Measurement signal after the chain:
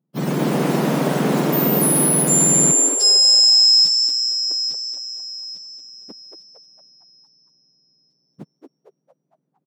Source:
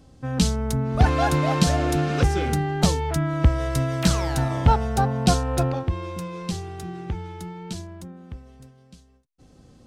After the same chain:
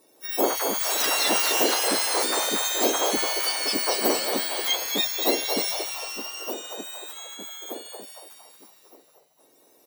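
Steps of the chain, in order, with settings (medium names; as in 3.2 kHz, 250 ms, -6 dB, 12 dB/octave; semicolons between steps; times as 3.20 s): spectrum inverted on a logarithmic axis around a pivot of 1.7 kHz; ever faster or slower copies 153 ms, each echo +6 st, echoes 3; frequency-shifting echo 229 ms, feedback 49%, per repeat +120 Hz, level -6.5 dB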